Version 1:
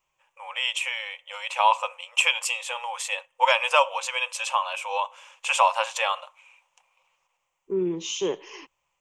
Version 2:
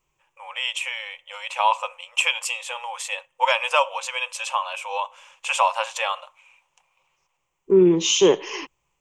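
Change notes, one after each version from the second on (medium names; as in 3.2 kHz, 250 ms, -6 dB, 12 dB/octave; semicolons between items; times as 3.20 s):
second voice +11.0 dB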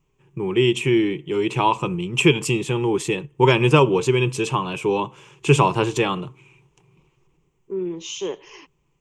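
first voice: remove brick-wall FIR high-pass 500 Hz; second voice -12.0 dB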